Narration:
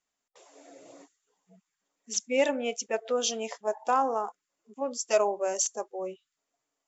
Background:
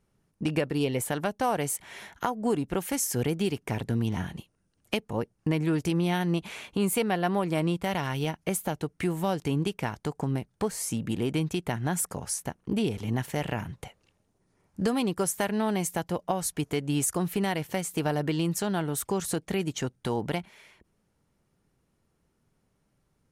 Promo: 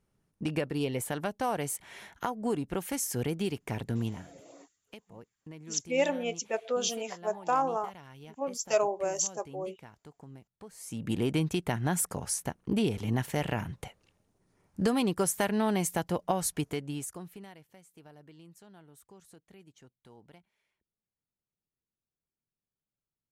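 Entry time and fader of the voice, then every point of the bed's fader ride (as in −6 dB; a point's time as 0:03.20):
3.60 s, −2.0 dB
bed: 0:04.07 −4 dB
0:04.29 −20 dB
0:10.65 −20 dB
0:11.12 −0.5 dB
0:16.54 −0.5 dB
0:17.71 −26 dB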